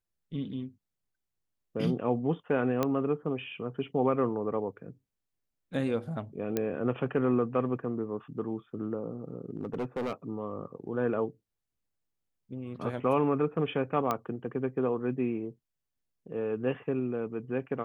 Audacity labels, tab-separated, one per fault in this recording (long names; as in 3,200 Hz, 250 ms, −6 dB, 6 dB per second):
2.830000	2.830000	click −14 dBFS
6.570000	6.570000	click −15 dBFS
9.510000	10.130000	clipping −28.5 dBFS
14.110000	14.110000	click −15 dBFS